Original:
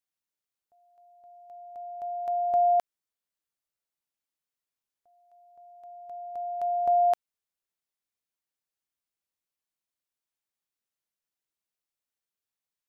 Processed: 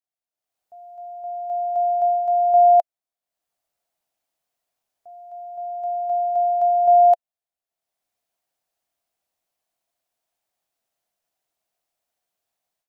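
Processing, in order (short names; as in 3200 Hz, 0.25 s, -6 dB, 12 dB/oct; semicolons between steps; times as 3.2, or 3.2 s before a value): bell 690 Hz +14.5 dB 0.5 oct; AGC gain up to 16 dB; gain -8.5 dB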